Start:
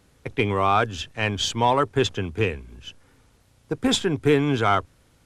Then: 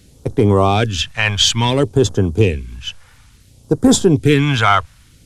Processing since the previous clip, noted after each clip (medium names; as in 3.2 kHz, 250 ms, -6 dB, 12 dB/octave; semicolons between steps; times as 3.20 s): phase shifter stages 2, 0.58 Hz, lowest notch 300–2400 Hz; loudness maximiser +13 dB; trim -1 dB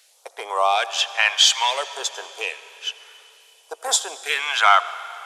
steep high-pass 640 Hz 36 dB/octave; on a send at -14 dB: reverberation RT60 3.4 s, pre-delay 40 ms; on the sum: trim -1 dB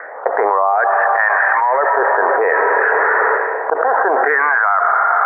level rider gain up to 6 dB; steep low-pass 1.9 kHz 96 dB/octave; level flattener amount 100%; trim -2 dB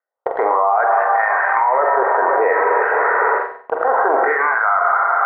gate -16 dBFS, range -54 dB; band-stop 1.7 kHz, Q 7.4; on a send: flutter echo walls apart 7.8 m, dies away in 0.43 s; on the sum: trim -2 dB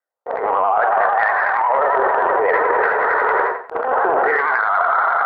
transient shaper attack -12 dB, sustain +11 dB; vibrato 11 Hz 73 cents; trim -1 dB